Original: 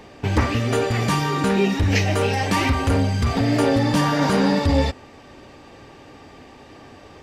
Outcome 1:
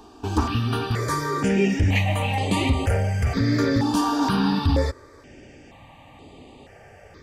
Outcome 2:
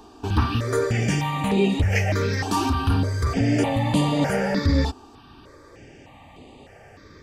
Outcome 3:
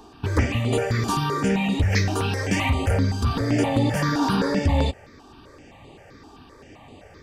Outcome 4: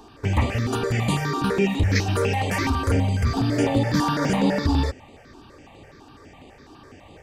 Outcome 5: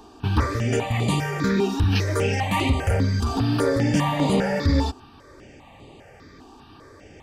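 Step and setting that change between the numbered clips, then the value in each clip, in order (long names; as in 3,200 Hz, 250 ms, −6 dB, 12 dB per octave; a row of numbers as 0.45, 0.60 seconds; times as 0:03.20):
step-sequenced phaser, speed: 2.1, 3.3, 7.7, 12, 5 Hertz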